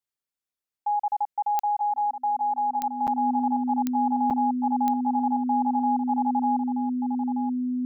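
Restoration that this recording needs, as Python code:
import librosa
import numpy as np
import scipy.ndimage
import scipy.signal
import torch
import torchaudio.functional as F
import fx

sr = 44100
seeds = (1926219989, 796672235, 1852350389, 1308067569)

y = fx.fix_declick_ar(x, sr, threshold=10.0)
y = fx.notch(y, sr, hz=250.0, q=30.0)
y = fx.fix_interpolate(y, sr, at_s=(3.07, 4.3), length_ms=7.7)
y = fx.fix_echo_inverse(y, sr, delay_ms=928, level_db=-9.0)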